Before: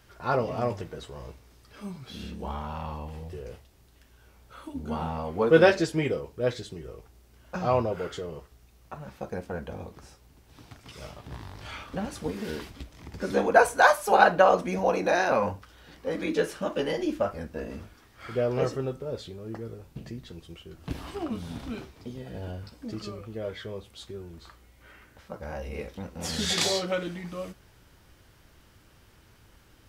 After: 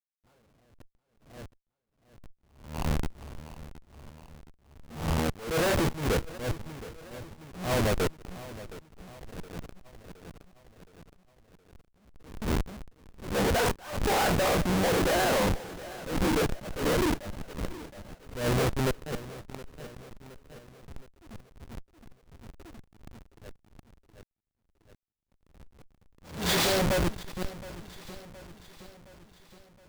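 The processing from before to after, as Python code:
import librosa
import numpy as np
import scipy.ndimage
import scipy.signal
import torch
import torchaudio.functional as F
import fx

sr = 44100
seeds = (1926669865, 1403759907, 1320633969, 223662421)

y = scipy.signal.sosfilt(scipy.signal.butter(4, 11000.0, 'lowpass', fs=sr, output='sos'), x)
y = fx.schmitt(y, sr, flips_db=-30.0)
y = fx.echo_feedback(y, sr, ms=718, feedback_pct=54, wet_db=-17.0)
y = fx.attack_slew(y, sr, db_per_s=110.0)
y = y * librosa.db_to_amplitude(5.0)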